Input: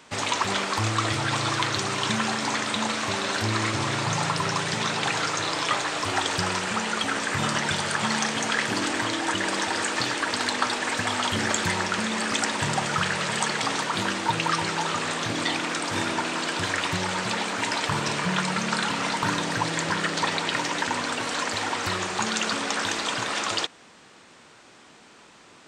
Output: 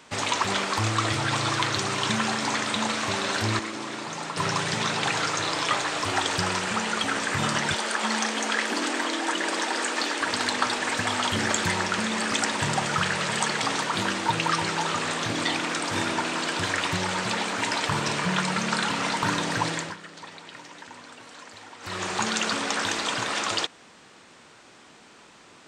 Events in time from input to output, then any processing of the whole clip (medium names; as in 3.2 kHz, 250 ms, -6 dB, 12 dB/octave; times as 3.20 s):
3.59–4.37 s: ladder high-pass 190 Hz, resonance 35%
7.74–10.21 s: elliptic high-pass 220 Hz
19.68–22.09 s: dip -17 dB, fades 0.29 s